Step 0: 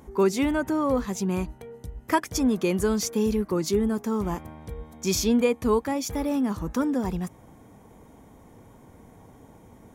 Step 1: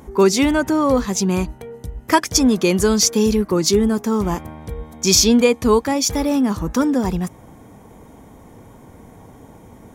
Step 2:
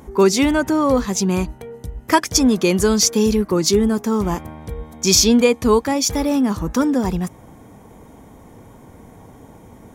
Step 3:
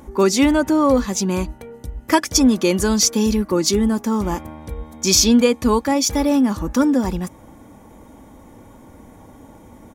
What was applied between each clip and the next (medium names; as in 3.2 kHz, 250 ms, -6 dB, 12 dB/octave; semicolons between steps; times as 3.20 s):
dynamic bell 5.2 kHz, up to +8 dB, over -48 dBFS, Q 0.95; trim +7.5 dB
no audible change
comb 3.5 ms, depth 38%; trim -1 dB